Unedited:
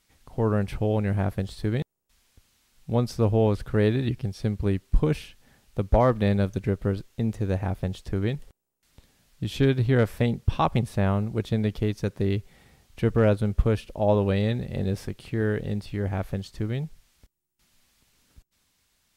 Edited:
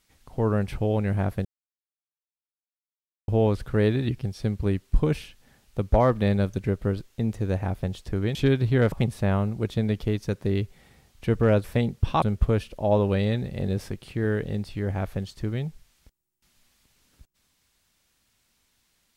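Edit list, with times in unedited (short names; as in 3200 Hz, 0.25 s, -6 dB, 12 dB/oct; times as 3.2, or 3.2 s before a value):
1.45–3.28 mute
8.35–9.52 cut
10.09–10.67 move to 13.39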